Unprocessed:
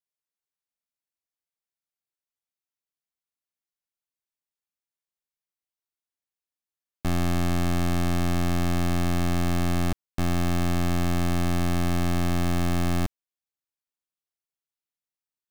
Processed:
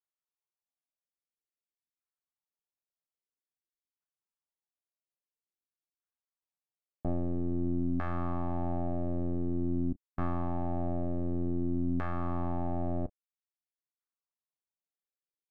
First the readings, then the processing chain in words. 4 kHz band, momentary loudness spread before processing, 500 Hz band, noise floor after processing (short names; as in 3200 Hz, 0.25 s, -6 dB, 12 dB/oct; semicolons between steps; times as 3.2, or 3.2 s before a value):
under -30 dB, 3 LU, -5.0 dB, under -85 dBFS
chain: doubler 31 ms -11.5 dB; LFO low-pass saw down 0.5 Hz 270–1500 Hz; reverb removal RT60 0.7 s; gain -7 dB